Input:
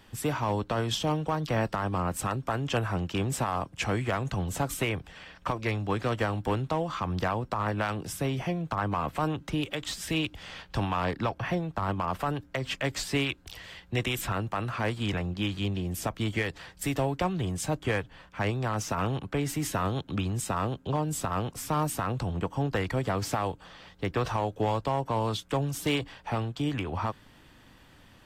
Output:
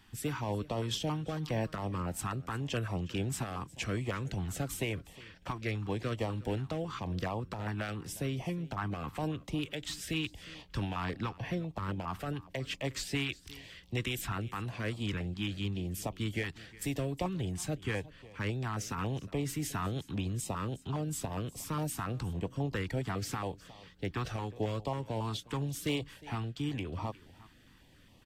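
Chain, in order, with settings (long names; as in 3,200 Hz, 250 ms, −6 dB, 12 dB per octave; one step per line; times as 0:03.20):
on a send: single-tap delay 360 ms −20 dB
on the sum: notch on a step sequencer 7.3 Hz 540–1,500 Hz
level −4.5 dB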